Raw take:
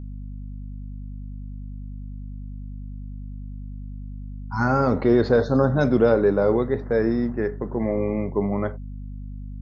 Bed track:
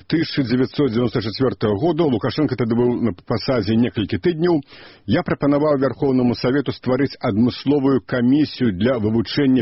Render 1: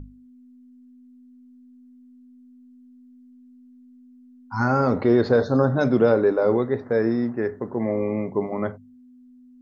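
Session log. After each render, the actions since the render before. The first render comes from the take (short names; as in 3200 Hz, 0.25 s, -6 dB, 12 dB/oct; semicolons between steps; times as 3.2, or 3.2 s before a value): notches 50/100/150/200 Hz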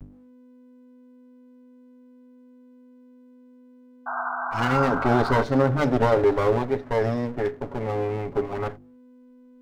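minimum comb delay 7.2 ms; 4.06–5.43 painted sound noise 650–1600 Hz -29 dBFS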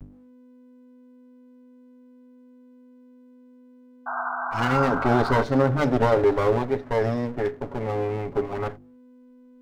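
nothing audible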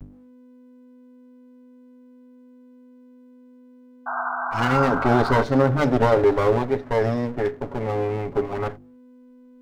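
gain +2 dB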